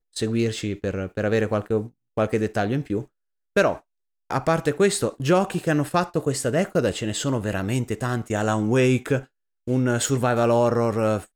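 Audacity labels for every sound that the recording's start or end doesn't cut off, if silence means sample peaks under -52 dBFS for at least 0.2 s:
2.170000	3.060000	sound
3.560000	3.810000	sound
4.300000	9.260000	sound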